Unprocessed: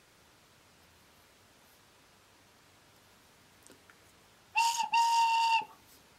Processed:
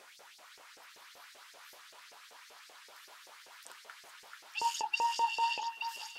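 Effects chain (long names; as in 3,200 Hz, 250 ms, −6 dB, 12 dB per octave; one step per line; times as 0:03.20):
sub-octave generator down 1 octave, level −2 dB
downward compressor 2 to 1, threshold −47 dBFS, peak gain reduction 12.5 dB
auto-filter high-pass saw up 5.2 Hz 440–5,800 Hz
hum removal 71.27 Hz, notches 5
on a send: echo through a band-pass that steps 436 ms, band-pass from 1,500 Hz, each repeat 1.4 octaves, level −1 dB
on the sum: level +4.5 dB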